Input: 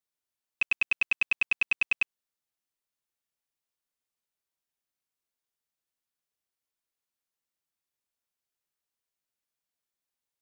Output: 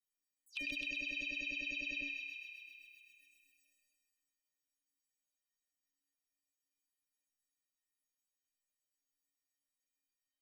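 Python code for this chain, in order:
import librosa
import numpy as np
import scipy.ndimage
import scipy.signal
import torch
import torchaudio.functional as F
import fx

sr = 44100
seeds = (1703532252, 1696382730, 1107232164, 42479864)

p1 = fx.spec_delay(x, sr, highs='early', ms=149)
p2 = scipy.signal.sosfilt(scipy.signal.cheby1(3, 1.0, [520.0, 1900.0], 'bandstop', fs=sr, output='sos'), p1)
p3 = fx.spec_gate(p2, sr, threshold_db=-20, keep='strong')
p4 = fx.level_steps(p3, sr, step_db=20)
p5 = p3 + (p4 * 10.0 ** (2.0 / 20.0))
p6 = fx.stiff_resonator(p5, sr, f0_hz=280.0, decay_s=0.69, stiffness=0.03)
p7 = fx.env_flanger(p6, sr, rest_ms=8.1, full_db=-53.0)
p8 = p7 + fx.echo_wet_highpass(p7, sr, ms=130, feedback_pct=66, hz=1600.0, wet_db=-7.0, dry=0)
p9 = fx.sustainer(p8, sr, db_per_s=22.0)
y = p9 * 10.0 ** (14.5 / 20.0)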